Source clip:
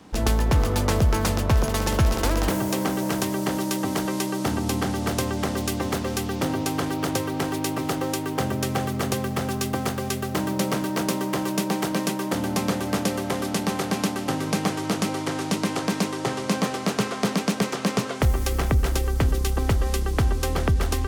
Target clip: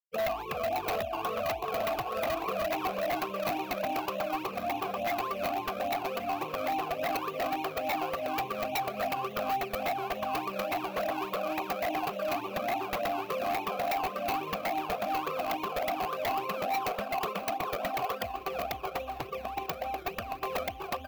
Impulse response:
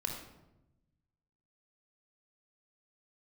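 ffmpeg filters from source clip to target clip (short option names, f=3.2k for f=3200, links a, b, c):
-filter_complex "[0:a]afftfilt=real='re*pow(10,23/40*sin(2*PI*(0.71*log(max(b,1)*sr/1024/100)/log(2)-(2.5)*(pts-256)/sr)))':imag='im*pow(10,23/40*sin(2*PI*(0.71*log(max(b,1)*sr/1024/100)/log(2)-(2.5)*(pts-256)/sr)))':win_size=1024:overlap=0.75,equalizer=f=630:t=o:w=0.22:g=3.5,afftfilt=real='re*gte(hypot(re,im),0.0891)':imag='im*gte(hypot(re,im),0.0891)':win_size=1024:overlap=0.75,highpass=f=51:w=0.5412,highpass=f=51:w=1.3066,acompressor=threshold=-22dB:ratio=2.5,acrusher=samples=19:mix=1:aa=0.000001:lfo=1:lforange=11.4:lforate=3.5,acontrast=87,asplit=3[a][b][c];[a]bandpass=f=730:t=q:w=8,volume=0dB[d];[b]bandpass=f=1.09k:t=q:w=8,volume=-6dB[e];[c]bandpass=f=2.44k:t=q:w=8,volume=-9dB[f];[d][e][f]amix=inputs=3:normalize=0,aeval=exprs='0.0562*(abs(mod(val(0)/0.0562+3,4)-2)-1)':c=same,aexciter=amount=11:drive=3.4:freq=12k,asplit=2[g][h];[h]aecho=0:1:1126|2252|3378|4504|5630:0.141|0.0777|0.0427|0.0235|0.0129[i];[g][i]amix=inputs=2:normalize=0"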